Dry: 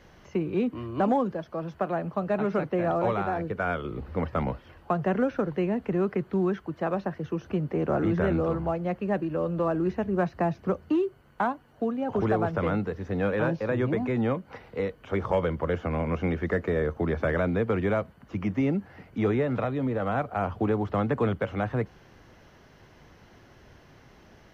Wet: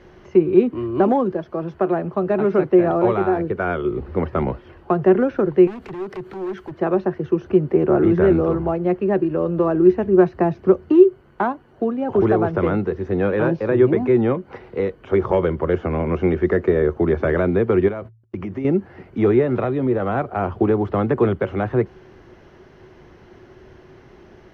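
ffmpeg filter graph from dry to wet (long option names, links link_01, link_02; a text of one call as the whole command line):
ffmpeg -i in.wav -filter_complex "[0:a]asettb=1/sr,asplit=3[link_01][link_02][link_03];[link_01]atrim=end=5.674[link_04];[link_02]atrim=start=5.67:end=6.72,asetpts=PTS-STARTPTS,afade=type=in:duration=0.004:curve=qsin,afade=type=out:start_time=1.046:duration=0.004:curve=qsin,highshelf=frequency=2900:gain=11.5,acompressor=threshold=-33dB:ratio=4:attack=3.2:release=140:knee=1:detection=peak,aeval=exprs='0.02*(abs(mod(val(0)/0.02+3,4)-2)-1)':channel_layout=same[link_05];[link_03]atrim=start=6.716[link_06];[link_04][link_05]acrossfade=duration=0.004:curve1=hsin:curve2=qsin[link_07];[link_07][link_06]acrossfade=duration=0.004:curve1=qsin:curve2=hsin,asettb=1/sr,asplit=3[link_08][link_09][link_10];[link_08]atrim=end=17.884[link_11];[link_09]atrim=start=17.88:end=18.65,asetpts=PTS-STARTPTS,afade=type=in:duration=0.004:curve=qsin,afade=type=out:start_time=0.766:duration=0.004:curve=qsin,agate=range=-50dB:threshold=-45dB:ratio=16:release=100:detection=peak,bandreject=frequency=56.28:width_type=h:width=4,bandreject=frequency=112.56:width_type=h:width=4,acompressor=threshold=-32dB:ratio=4:attack=3.2:release=140:knee=1:detection=peak[link_12];[link_10]atrim=start=18.646[link_13];[link_11][link_12]acrossfade=duration=0.004:curve1=hsin:curve2=qsin[link_14];[link_14][link_13]acrossfade=duration=0.004:curve1=qsin:curve2=hsin,lowpass=frequency=2700:poles=1,equalizer=frequency=370:width=6.5:gain=13.5,volume=5.5dB" out.wav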